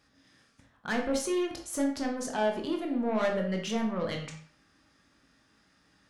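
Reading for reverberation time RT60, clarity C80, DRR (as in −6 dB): 0.50 s, 10.5 dB, 1.0 dB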